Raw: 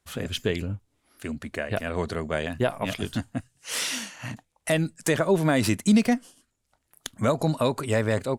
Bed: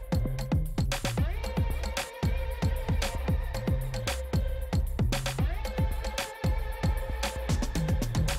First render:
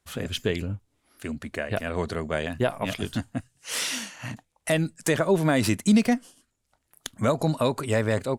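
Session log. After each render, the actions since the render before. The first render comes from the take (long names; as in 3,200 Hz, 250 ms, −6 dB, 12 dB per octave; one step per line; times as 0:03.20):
no processing that can be heard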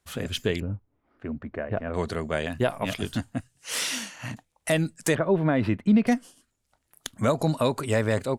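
0:00.60–0:01.94: low-pass filter 1,300 Hz
0:05.15–0:06.07: high-frequency loss of the air 450 metres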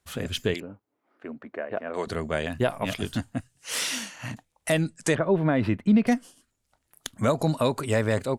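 0:00.54–0:02.07: high-pass filter 310 Hz
0:04.79–0:05.32: low-pass filter 9,800 Hz 24 dB per octave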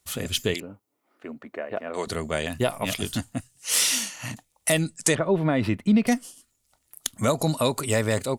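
high-shelf EQ 4,200 Hz +12 dB
notch filter 1,600 Hz, Q 11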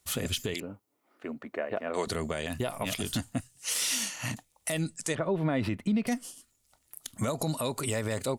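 downward compressor 6 to 1, threshold −24 dBFS, peak gain reduction 8.5 dB
brickwall limiter −19.5 dBFS, peak gain reduction 11 dB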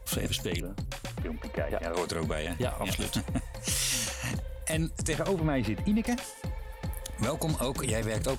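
mix in bed −8 dB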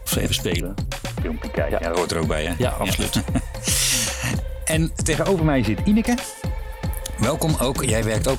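level +9.5 dB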